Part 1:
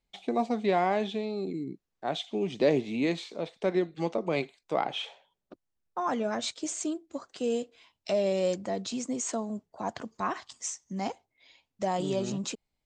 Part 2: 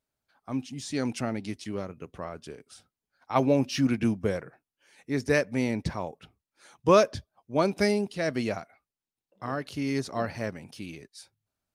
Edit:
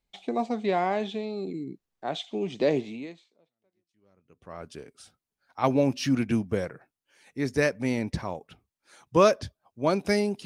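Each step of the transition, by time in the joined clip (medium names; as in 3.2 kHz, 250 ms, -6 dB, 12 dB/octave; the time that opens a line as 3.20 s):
part 1
3.73 s: go over to part 2 from 1.45 s, crossfade 1.76 s exponential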